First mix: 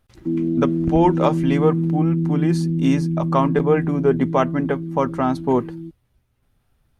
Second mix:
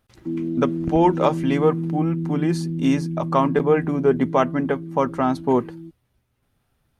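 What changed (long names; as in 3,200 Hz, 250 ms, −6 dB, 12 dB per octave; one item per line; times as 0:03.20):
background −4.0 dB
master: add low-shelf EQ 63 Hz −10.5 dB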